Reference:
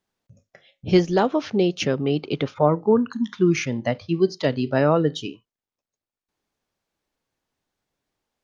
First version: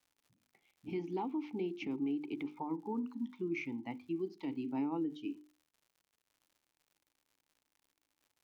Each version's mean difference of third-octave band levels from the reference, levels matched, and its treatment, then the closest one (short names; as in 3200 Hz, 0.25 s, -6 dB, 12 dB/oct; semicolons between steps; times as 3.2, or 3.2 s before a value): 6.0 dB: vowel filter u; crackle 140/s -57 dBFS; limiter -27.5 dBFS, peak gain reduction 9 dB; notches 50/100/150/200/250/300/350/400/450 Hz; gain -1.5 dB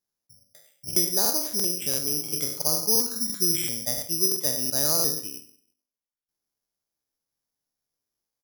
15.5 dB: spectral trails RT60 0.57 s; on a send: echo 96 ms -12 dB; on the sum: careless resampling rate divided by 8×, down filtered, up zero stuff; crackling interface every 0.34 s, samples 2048, repeat, from 0.87; gain -15 dB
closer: first